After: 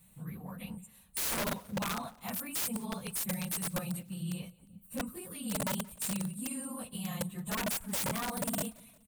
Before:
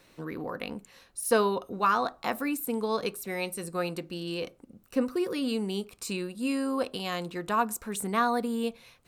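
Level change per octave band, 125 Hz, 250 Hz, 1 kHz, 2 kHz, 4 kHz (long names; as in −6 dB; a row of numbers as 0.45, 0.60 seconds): +2.0, −6.5, −11.5, −6.5, −3.0 decibels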